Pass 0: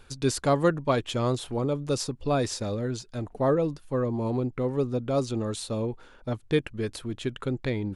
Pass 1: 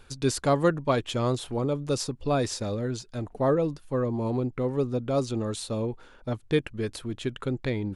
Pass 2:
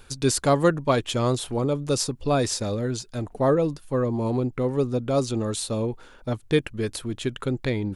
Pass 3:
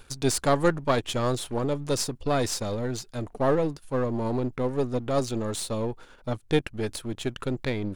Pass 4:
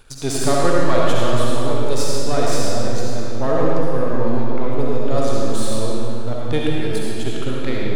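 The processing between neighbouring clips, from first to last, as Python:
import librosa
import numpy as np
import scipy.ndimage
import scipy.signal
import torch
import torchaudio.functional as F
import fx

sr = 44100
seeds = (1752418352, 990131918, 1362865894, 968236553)

y1 = x
y2 = fx.high_shelf(y1, sr, hz=7000.0, db=7.5)
y2 = F.gain(torch.from_numpy(y2), 3.0).numpy()
y3 = np.where(y2 < 0.0, 10.0 ** (-7.0 / 20.0) * y2, y2)
y4 = fx.rev_freeverb(y3, sr, rt60_s=2.6, hf_ratio=0.85, predelay_ms=25, drr_db=-5.0)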